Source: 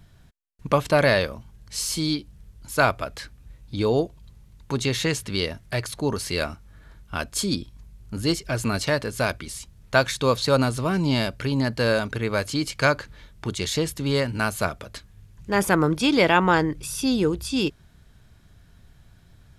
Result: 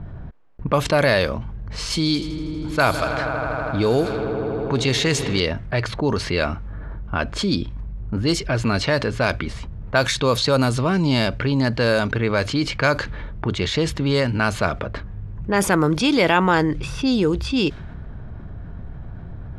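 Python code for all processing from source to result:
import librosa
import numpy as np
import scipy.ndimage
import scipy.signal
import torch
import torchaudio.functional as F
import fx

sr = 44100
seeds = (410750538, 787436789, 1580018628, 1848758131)

y = fx.chain(x, sr, fx.high_shelf(hz=8800.0, db=10.0),
    fx.echo_swell(ms=80, loudest=5, wet_db=-18), at=(1.9, 5.4))
y = fx.env_lowpass(y, sr, base_hz=970.0, full_db=-15.5)
y = fx.env_flatten(y, sr, amount_pct=50)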